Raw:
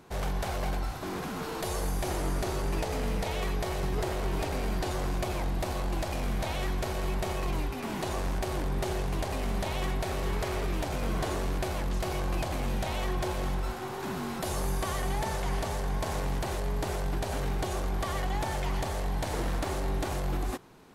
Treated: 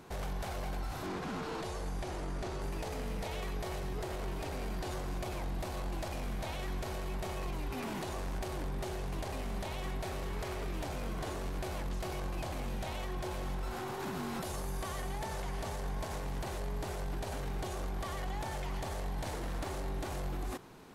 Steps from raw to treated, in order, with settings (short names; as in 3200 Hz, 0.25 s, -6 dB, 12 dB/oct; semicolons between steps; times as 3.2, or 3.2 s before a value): limiter -31.5 dBFS, peak gain reduction 11.5 dB; 1.06–2.62 air absorption 52 m; gain +1 dB